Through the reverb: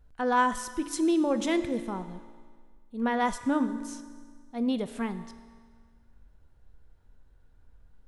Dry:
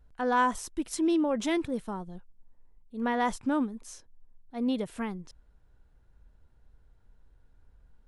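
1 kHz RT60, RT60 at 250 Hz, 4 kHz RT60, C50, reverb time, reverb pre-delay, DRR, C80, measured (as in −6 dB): 1.7 s, 1.8 s, 1.7 s, 12.5 dB, 1.7 s, 3 ms, 10.5 dB, 13.0 dB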